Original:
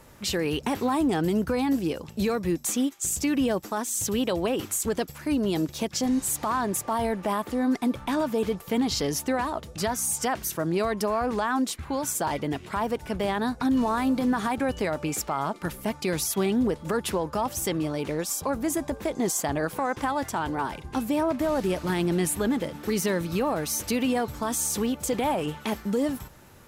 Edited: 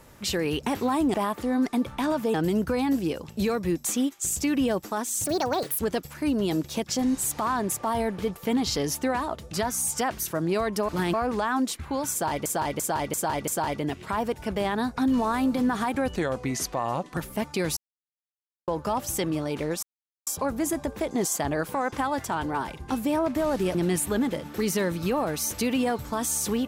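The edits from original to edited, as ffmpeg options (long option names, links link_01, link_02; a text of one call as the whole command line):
ffmpeg -i in.wav -filter_complex "[0:a]asplit=18[link_01][link_02][link_03][link_04][link_05][link_06][link_07][link_08][link_09][link_10][link_11][link_12][link_13][link_14][link_15][link_16][link_17][link_18];[link_01]atrim=end=1.142[link_19];[link_02]atrim=start=7.228:end=8.432[link_20];[link_03]atrim=start=1.138:end=4.044[link_21];[link_04]atrim=start=4.04:end=4.84,asetpts=PTS-STARTPTS,asetrate=63504,aresample=44100[link_22];[link_05]atrim=start=4.836:end=7.232[link_23];[link_06]atrim=start=8.428:end=11.132[link_24];[link_07]atrim=start=21.788:end=22.042[link_25];[link_08]atrim=start=11.128:end=12.452[link_26];[link_09]atrim=start=12.108:end=12.452[link_27];[link_10]atrim=start=12.108:end=12.452[link_28];[link_11]atrim=start=12.108:end=12.452[link_29];[link_12]atrim=start=12.108:end=14.794[link_30];[link_13]atrim=start=14.79:end=15.65,asetpts=PTS-STARTPTS,asetrate=37485,aresample=44100[link_31];[link_14]atrim=start=15.646:end=16.25,asetpts=PTS-STARTPTS,afade=type=out:start_time=0.6:duration=0.004:curve=hsin[link_32];[link_15]atrim=start=16.25:end=17.16,asetpts=PTS-STARTPTS,volume=0[link_33];[link_16]atrim=start=17.16:end=18.31,asetpts=PTS-STARTPTS,afade=type=in:duration=0.004:curve=hsin,afade=type=out:start_time=1.146:duration=0.004:curve=hsin,apad=pad_dur=0.44[link_34];[link_17]atrim=start=18.31:end=21.792,asetpts=PTS-STARTPTS,afade=type=in:duration=0.004:curve=hsin[link_35];[link_18]atrim=start=22.038[link_36];[link_19][link_20]acrossfade=duration=0.004:curve1=hsin:curve2=hsin[link_37];[link_37][link_21]acrossfade=duration=0.004:curve1=hsin:curve2=hsin[link_38];[link_38][link_22]acrossfade=duration=0.004:curve1=hsin:curve2=hsin[link_39];[link_39][link_23]acrossfade=duration=0.004:curve1=hsin:curve2=hsin[link_40];[link_40][link_24]acrossfade=duration=0.004:curve1=hsin:curve2=hsin[link_41];[link_41][link_25]acrossfade=duration=0.004:curve1=hsin:curve2=hsin[link_42];[link_42][link_26]acrossfade=duration=0.004:curve1=hsin:curve2=hsin[link_43];[link_43][link_27]acrossfade=duration=0.004:curve1=hsin:curve2=hsin[link_44];[link_44][link_28]acrossfade=duration=0.004:curve1=hsin:curve2=hsin[link_45];[link_45][link_29]acrossfade=duration=0.004:curve1=hsin:curve2=hsin[link_46];[link_46][link_30]acrossfade=duration=0.004:curve1=hsin:curve2=hsin[link_47];[link_47][link_31]acrossfade=duration=0.004:curve1=hsin:curve2=hsin[link_48];[link_32][link_33][link_34][link_35]concat=n=4:v=0:a=1[link_49];[link_48][link_49]acrossfade=duration=0.004:curve1=hsin:curve2=hsin[link_50];[link_50][link_36]acrossfade=duration=0.004:curve1=hsin:curve2=hsin" out.wav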